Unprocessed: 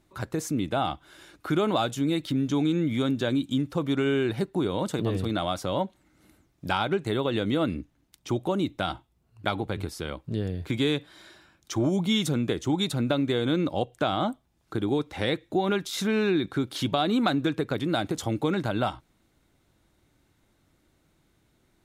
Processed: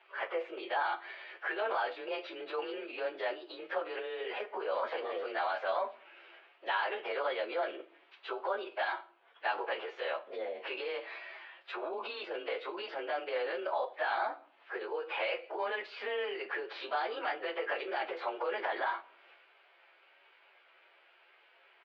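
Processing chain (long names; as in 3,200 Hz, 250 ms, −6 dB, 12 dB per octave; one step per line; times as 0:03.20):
partials spread apart or drawn together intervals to 108%
spectral tilt +1.5 dB per octave
brickwall limiter −24.5 dBFS, peak gain reduction 10 dB
transient designer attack 0 dB, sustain +7 dB
downward compressor 3 to 1, threshold −35 dBFS, peak gain reduction 5.5 dB
phase-vocoder pitch shift with formants kept −2.5 semitones
double-tracking delay 18 ms −14 dB
convolution reverb RT60 0.50 s, pre-delay 6 ms, DRR 12 dB
single-sideband voice off tune +66 Hz 430–3,000 Hz
one half of a high-frequency compander encoder only
level +7 dB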